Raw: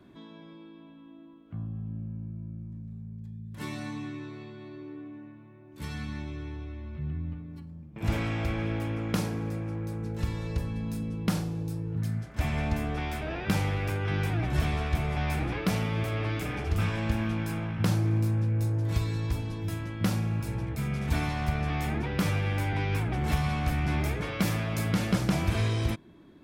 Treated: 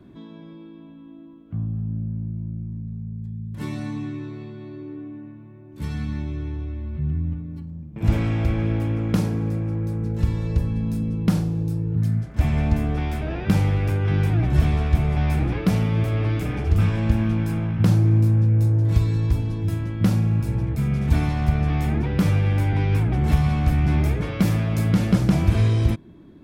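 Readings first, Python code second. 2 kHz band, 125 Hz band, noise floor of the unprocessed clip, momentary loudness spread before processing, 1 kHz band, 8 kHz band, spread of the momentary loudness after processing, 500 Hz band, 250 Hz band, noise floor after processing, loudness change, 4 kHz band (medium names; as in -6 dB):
+0.5 dB, +9.5 dB, -51 dBFS, 14 LU, +2.0 dB, no reading, 14 LU, +4.5 dB, +8.0 dB, -43 dBFS, +8.0 dB, 0.0 dB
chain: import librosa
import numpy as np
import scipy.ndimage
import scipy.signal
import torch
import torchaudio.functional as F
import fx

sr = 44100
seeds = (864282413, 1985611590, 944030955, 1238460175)

y = fx.low_shelf(x, sr, hz=430.0, db=10.0)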